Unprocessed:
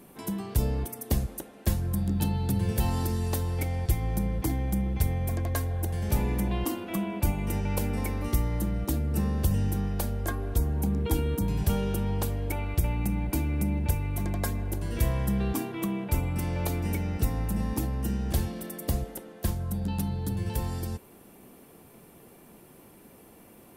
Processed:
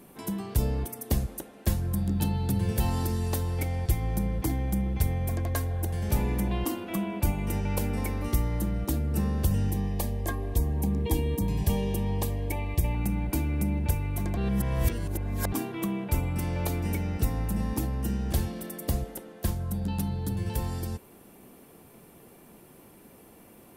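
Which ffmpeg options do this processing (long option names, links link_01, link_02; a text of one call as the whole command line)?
ffmpeg -i in.wav -filter_complex "[0:a]asettb=1/sr,asplit=3[link_01][link_02][link_03];[link_01]atrim=end=9.704[link_04];[link_02]atrim=start=9.7:end=12.95,asetpts=PTS-STARTPTS,afade=type=in:duration=0.004:curve=qsin,afade=type=out:start_time=3.246:duration=0.004:curve=qsin,asuperstop=centerf=1400:order=20:qfactor=4[link_05];[link_03]atrim=start=12.946[link_06];[link_04][link_05]acrossfade=duration=0.004:curve1=hsin:curve2=qsin[link_07];[link_07][link_06]acrossfade=duration=0.004:curve1=qsin:curve2=hsin,asplit=3[link_08][link_09][link_10];[link_08]atrim=end=14.372[link_11];[link_09]atrim=start=14.368:end=15.522,asetpts=PTS-STARTPTS,areverse[link_12];[link_10]atrim=start=15.518[link_13];[link_11][link_12]acrossfade=duration=0.004:curve1=hsin:curve2=hsin[link_14];[link_14][link_13]acrossfade=duration=0.004:curve1=hsin:curve2=hsin" out.wav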